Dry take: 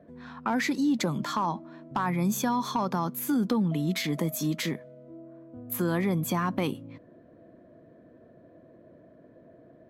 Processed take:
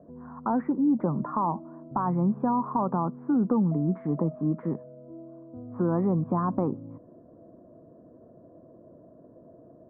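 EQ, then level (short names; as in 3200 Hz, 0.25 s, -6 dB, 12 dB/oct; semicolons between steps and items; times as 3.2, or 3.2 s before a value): steep low-pass 1200 Hz 36 dB/oct; +2.0 dB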